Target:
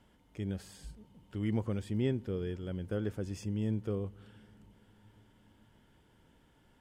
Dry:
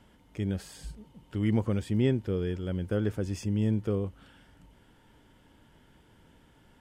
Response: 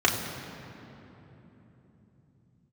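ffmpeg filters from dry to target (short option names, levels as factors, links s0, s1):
-filter_complex "[0:a]asplit=2[s0][s1];[1:a]atrim=start_sample=2205[s2];[s1][s2]afir=irnorm=-1:irlink=0,volume=0.0126[s3];[s0][s3]amix=inputs=2:normalize=0,volume=0.501"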